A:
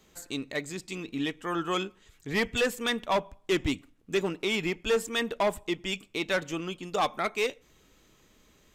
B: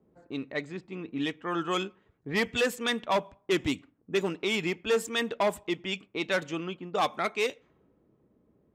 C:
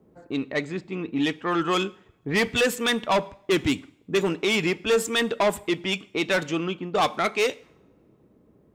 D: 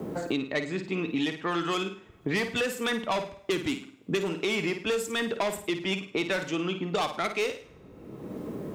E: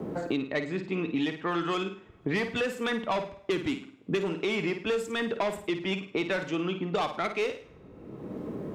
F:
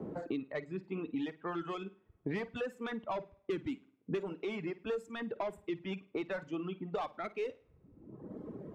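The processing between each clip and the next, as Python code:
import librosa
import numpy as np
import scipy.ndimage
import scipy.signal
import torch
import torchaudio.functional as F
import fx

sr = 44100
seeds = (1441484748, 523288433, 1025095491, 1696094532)

y1 = scipy.signal.sosfilt(scipy.signal.butter(2, 94.0, 'highpass', fs=sr, output='sos'), x)
y1 = fx.env_lowpass(y1, sr, base_hz=510.0, full_db=-24.5)
y2 = 10.0 ** (-24.0 / 20.0) * np.tanh(y1 / 10.0 ** (-24.0 / 20.0))
y2 = fx.rev_double_slope(y2, sr, seeds[0], early_s=0.62, late_s=2.4, knee_db=-28, drr_db=19.5)
y2 = y2 * 10.0 ** (8.0 / 20.0)
y3 = fx.room_flutter(y2, sr, wall_m=9.0, rt60_s=0.33)
y3 = fx.band_squash(y3, sr, depth_pct=100)
y3 = y3 * 10.0 ** (-6.0 / 20.0)
y4 = fx.lowpass(y3, sr, hz=2900.0, slope=6)
y5 = fx.high_shelf(y4, sr, hz=2200.0, db=-11.5)
y5 = fx.dereverb_blind(y5, sr, rt60_s=1.7)
y5 = y5 * 10.0 ** (-6.0 / 20.0)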